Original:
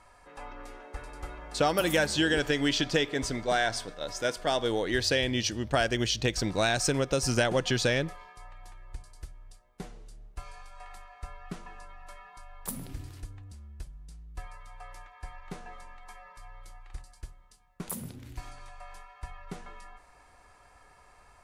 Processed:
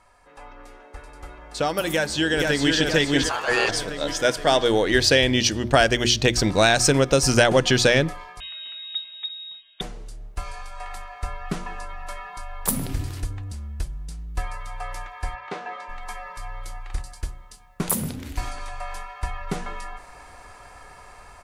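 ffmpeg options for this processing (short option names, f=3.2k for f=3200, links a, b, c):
-filter_complex "[0:a]asplit=2[a][b];[b]afade=t=in:st=1.92:d=0.01,afade=t=out:st=2.76:d=0.01,aecho=0:1:470|940|1410|1880|2350|2820:0.630957|0.315479|0.157739|0.0788697|0.0394348|0.0197174[c];[a][c]amix=inputs=2:normalize=0,asettb=1/sr,asplit=3[d][e][f];[d]atrim=end=3.294[g];[e]atrim=start=3.29:end=3.69,asetpts=PTS-STARTPTS,afade=t=in:d=0.004:c=qsin,afade=t=out:st=0.396:d=0.004:c=qsin,aeval=exprs='val(0)*sin(2*PI*1100*n/s)':c=same[h];[f]atrim=start=3.686[i];[g][h]acrossfade=d=0.004:c1=hsin:c2=qsin[j];[j][i]acrossfade=d=0.004:c1=qsin:c2=hsin,asettb=1/sr,asplit=3[k][l][m];[k]atrim=end=8.404[n];[l]atrim=start=8.4:end=9.81,asetpts=PTS-STARTPTS,afade=t=in:d=0.004:c=qsin,afade=t=out:st=1.406:d=0.004:c=qsin,lowpass=f=3.2k:t=q:w=0.5098,lowpass=f=3.2k:t=q:w=0.6013,lowpass=f=3.2k:t=q:w=0.9,lowpass=f=3.2k:t=q:w=2.563,afreqshift=-3800[o];[m]atrim=start=9.806[p];[n][o]acrossfade=d=0.004:c1=hsin:c2=qsin[q];[q][p]acrossfade=d=0.004:c1=qsin:c2=hsin,asplit=3[r][s][t];[r]afade=t=out:st=15.34:d=0.02[u];[s]highpass=360,lowpass=3.9k,afade=t=in:st=15.34:d=0.02,afade=t=out:st=15.88:d=0.02[v];[t]afade=t=in:st=15.88:d=0.02[w];[u][v][w]amix=inputs=3:normalize=0,bandreject=f=60:t=h:w=6,bandreject=f=120:t=h:w=6,bandreject=f=180:t=h:w=6,bandreject=f=240:t=h:w=6,bandreject=f=300:t=h:w=6,bandreject=f=360:t=h:w=6,dynaudnorm=f=680:g=9:m=13.5dB"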